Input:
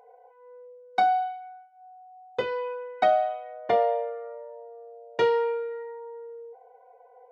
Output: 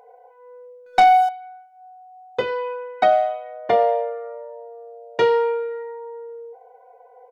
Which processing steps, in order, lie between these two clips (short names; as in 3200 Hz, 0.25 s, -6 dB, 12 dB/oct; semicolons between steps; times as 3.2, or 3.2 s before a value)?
speakerphone echo 90 ms, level -19 dB; 0.86–1.29 sample leveller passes 2; gain +5 dB